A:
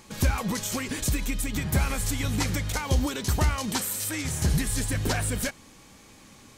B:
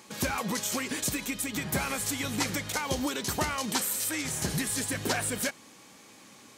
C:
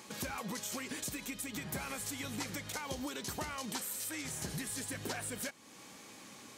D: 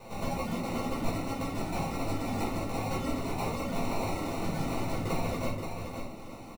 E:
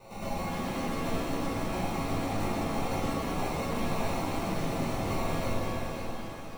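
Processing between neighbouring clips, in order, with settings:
Bessel high-pass filter 230 Hz, order 2
downward compressor 2 to 1, threshold −45 dBFS, peak gain reduction 11.5 dB
decimation without filtering 27×; single-tap delay 526 ms −6 dB; rectangular room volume 340 cubic metres, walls furnished, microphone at 5.2 metres; level −3 dB
reverb with rising layers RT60 2.3 s, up +7 semitones, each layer −8 dB, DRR −3.5 dB; level −4.5 dB

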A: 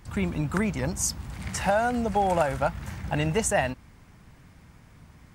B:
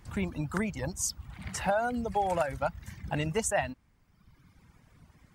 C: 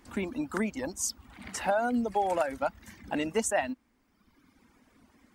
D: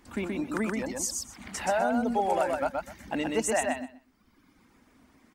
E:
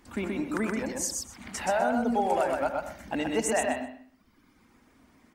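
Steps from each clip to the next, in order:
reverb reduction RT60 1.3 s; level −4 dB
low shelf with overshoot 190 Hz −9 dB, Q 3
repeating echo 126 ms, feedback 18%, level −3 dB
convolution reverb, pre-delay 71 ms, DRR 9 dB

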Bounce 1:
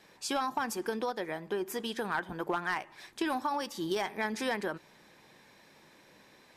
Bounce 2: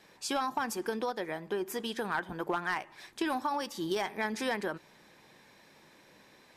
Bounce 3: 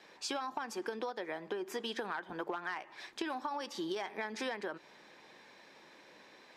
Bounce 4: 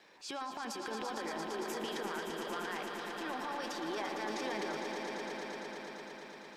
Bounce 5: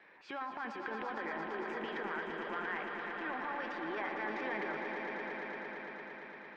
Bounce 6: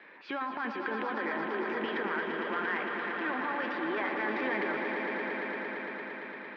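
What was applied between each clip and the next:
no processing that can be heard
three-way crossover with the lows and the highs turned down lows −13 dB, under 240 Hz, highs −14 dB, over 6,600 Hz; downward compressor, threshold −37 dBFS, peak gain reduction 10 dB; level +2 dB
surface crackle 240 per second −65 dBFS; transient designer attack −6 dB, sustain +9 dB; echo that builds up and dies away 114 ms, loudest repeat 5, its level −8 dB; level −3 dB
low-pass with resonance 2,000 Hz, resonance Q 2.1; level −2 dB
in parallel at −10 dB: soft clipping −38 dBFS, distortion −12 dB; on the sum: loudspeaker in its box 110–4,600 Hz, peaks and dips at 140 Hz −8 dB, 260 Hz +4 dB, 770 Hz −4 dB; level +5 dB

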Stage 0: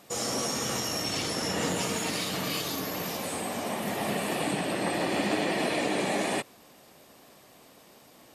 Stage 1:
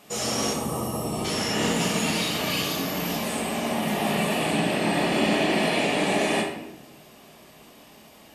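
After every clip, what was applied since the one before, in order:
gain on a spectral selection 0:00.53–0:01.25, 1,300–7,500 Hz −15 dB
parametric band 2,700 Hz +4.5 dB 0.49 octaves
rectangular room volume 280 cubic metres, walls mixed, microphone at 1.4 metres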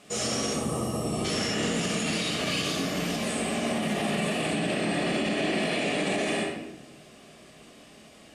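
Chebyshev low-pass filter 9,400 Hz, order 3
parametric band 910 Hz −10.5 dB 0.31 octaves
brickwall limiter −18.5 dBFS, peak gain reduction 7.5 dB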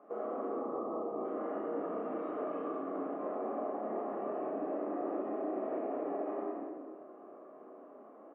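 elliptic band-pass filter 290–1,200 Hz, stop band 60 dB
downward compressor 4 to 1, threshold −37 dBFS, peak gain reduction 10 dB
on a send: loudspeakers that aren't time-aligned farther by 11 metres −3 dB, 71 metres −7 dB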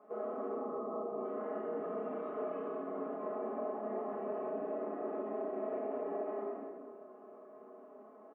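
comb filter 4.7 ms, depth 80%
level −4 dB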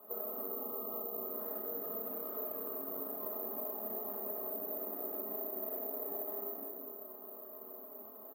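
running median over 15 samples
bad sample-rate conversion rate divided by 3×, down filtered, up zero stuff
downward compressor 2 to 1, threshold −40 dBFS, peak gain reduction 7.5 dB

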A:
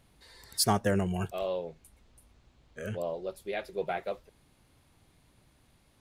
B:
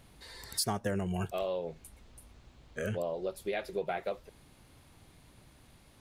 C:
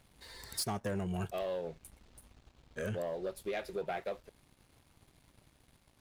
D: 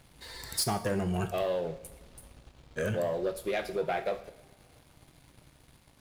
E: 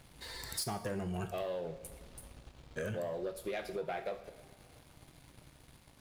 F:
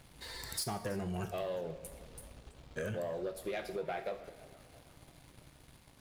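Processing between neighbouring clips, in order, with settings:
downward compressor 4 to 1, threshold −37 dBFS, peak gain reduction 13.5 dB; level +5.5 dB
leveller curve on the samples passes 2; level −9 dB
coupled-rooms reverb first 0.68 s, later 2.4 s, DRR 8.5 dB; level +6 dB
downward compressor 2 to 1, threshold −41 dBFS, peak gain reduction 8.5 dB
feedback echo with a swinging delay time 328 ms, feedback 52%, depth 189 cents, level −20 dB

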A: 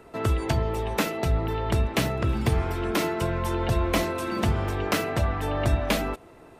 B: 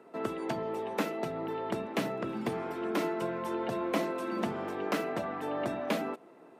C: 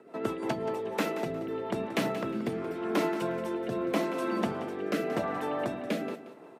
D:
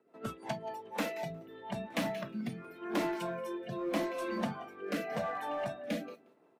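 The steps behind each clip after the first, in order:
high-pass filter 190 Hz 24 dB per octave; high-shelf EQ 2,200 Hz −9.5 dB; level −4 dB
rotating-speaker cabinet horn 6 Hz, later 0.9 Hz, at 0:00.27; repeating echo 179 ms, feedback 27%, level −12.5 dB; level +4 dB
noise reduction from a noise print of the clip's start 15 dB; in parallel at −9 dB: wave folding −31 dBFS; on the sum: level −4 dB

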